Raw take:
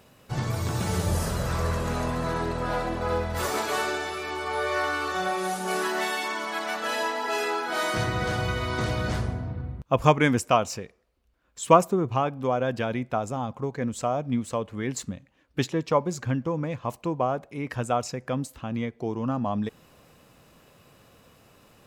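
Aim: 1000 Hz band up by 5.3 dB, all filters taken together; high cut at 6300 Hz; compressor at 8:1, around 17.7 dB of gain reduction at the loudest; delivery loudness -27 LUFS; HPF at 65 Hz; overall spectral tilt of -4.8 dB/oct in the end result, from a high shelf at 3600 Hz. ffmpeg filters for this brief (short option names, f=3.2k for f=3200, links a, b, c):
-af "highpass=65,lowpass=6.3k,equalizer=f=1k:t=o:g=7,highshelf=f=3.6k:g=-4.5,acompressor=threshold=-25dB:ratio=8,volume=3.5dB"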